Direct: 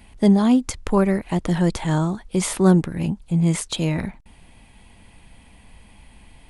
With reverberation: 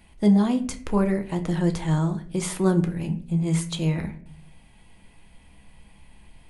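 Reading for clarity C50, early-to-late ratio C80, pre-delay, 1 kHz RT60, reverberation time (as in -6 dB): 13.5 dB, 18.0 dB, 6 ms, 0.45 s, 0.55 s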